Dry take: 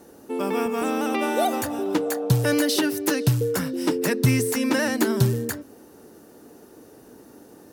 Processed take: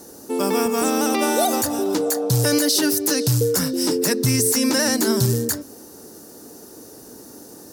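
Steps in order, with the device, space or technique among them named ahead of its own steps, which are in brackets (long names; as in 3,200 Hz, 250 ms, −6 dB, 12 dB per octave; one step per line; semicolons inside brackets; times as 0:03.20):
over-bright horn tweeter (high shelf with overshoot 3,800 Hz +8.5 dB, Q 1.5; brickwall limiter −13.5 dBFS, peak gain reduction 10 dB)
level +4.5 dB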